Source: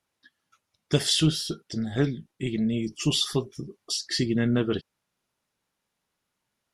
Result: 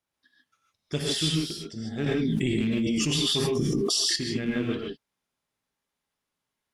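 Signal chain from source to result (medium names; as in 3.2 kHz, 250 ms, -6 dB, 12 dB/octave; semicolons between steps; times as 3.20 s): rattle on loud lows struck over -26 dBFS, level -26 dBFS; gated-style reverb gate 170 ms rising, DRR -2 dB; 2.06–4.16 s: level flattener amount 100%; trim -7.5 dB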